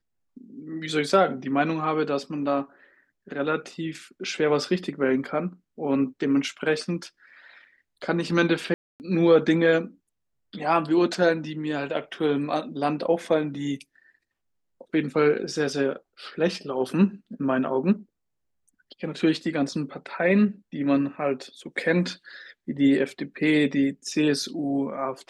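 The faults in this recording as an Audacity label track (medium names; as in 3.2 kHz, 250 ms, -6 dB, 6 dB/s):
8.740000	9.000000	dropout 259 ms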